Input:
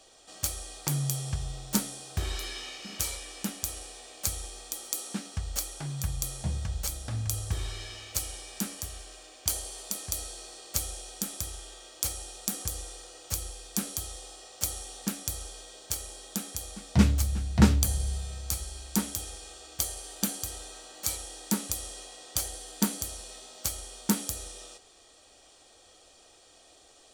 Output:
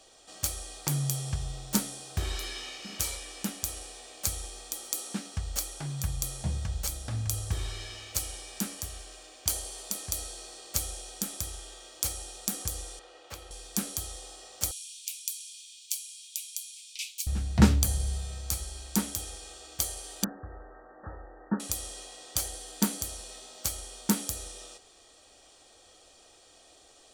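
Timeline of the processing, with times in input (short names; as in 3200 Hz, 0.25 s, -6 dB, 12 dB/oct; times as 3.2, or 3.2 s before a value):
12.99–13.51 three-band isolator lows -12 dB, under 300 Hz, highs -17 dB, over 3600 Hz
14.71–17.27 steep high-pass 2300 Hz 96 dB/oct
20.24–21.6 brick-wall FIR low-pass 1900 Hz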